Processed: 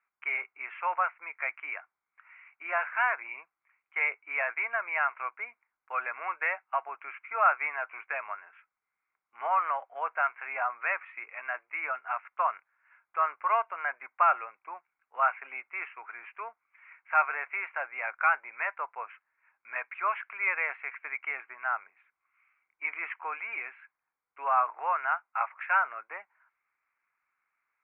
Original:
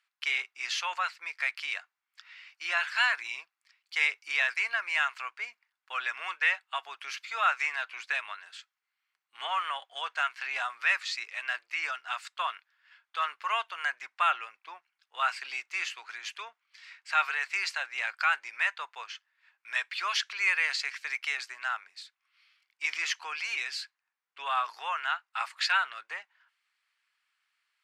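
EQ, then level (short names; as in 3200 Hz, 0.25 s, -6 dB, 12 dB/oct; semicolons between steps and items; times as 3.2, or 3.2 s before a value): steep low-pass 2300 Hz 72 dB/oct; bell 1800 Hz -10 dB 0.43 oct; dynamic EQ 600 Hz, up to +5 dB, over -51 dBFS, Q 1.8; +4.5 dB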